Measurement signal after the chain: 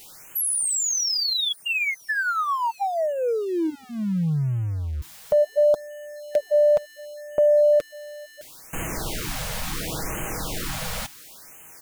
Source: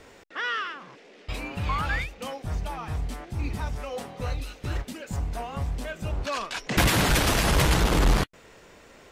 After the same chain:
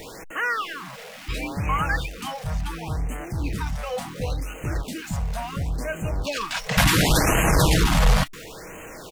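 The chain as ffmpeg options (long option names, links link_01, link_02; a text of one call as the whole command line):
ffmpeg -i in.wav -af "aeval=exprs='val(0)+0.5*0.0106*sgn(val(0))':channel_layout=same,aecho=1:1:6.3:0.31,afftfilt=real='re*(1-between(b*sr/1024,300*pow(4500/300,0.5+0.5*sin(2*PI*0.71*pts/sr))/1.41,300*pow(4500/300,0.5+0.5*sin(2*PI*0.71*pts/sr))*1.41))':imag='im*(1-between(b*sr/1024,300*pow(4500/300,0.5+0.5*sin(2*PI*0.71*pts/sr))/1.41,300*pow(4500/300,0.5+0.5*sin(2*PI*0.71*pts/sr))*1.41))':win_size=1024:overlap=0.75,volume=3dB" out.wav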